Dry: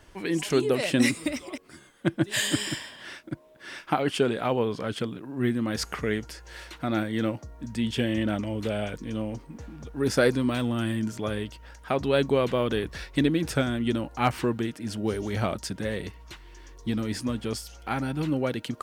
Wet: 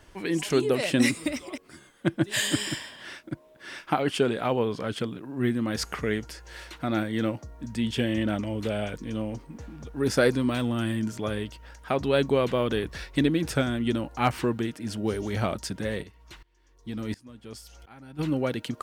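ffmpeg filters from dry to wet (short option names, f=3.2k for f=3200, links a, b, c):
-filter_complex "[0:a]asplit=3[a][b][c];[a]afade=t=out:st=16.02:d=0.02[d];[b]aeval=exprs='val(0)*pow(10,-23*if(lt(mod(-1.4*n/s,1),2*abs(-1.4)/1000),1-mod(-1.4*n/s,1)/(2*abs(-1.4)/1000),(mod(-1.4*n/s,1)-2*abs(-1.4)/1000)/(1-2*abs(-1.4)/1000))/20)':c=same,afade=t=in:st=16.02:d=0.02,afade=t=out:st=18.18:d=0.02[e];[c]afade=t=in:st=18.18:d=0.02[f];[d][e][f]amix=inputs=3:normalize=0"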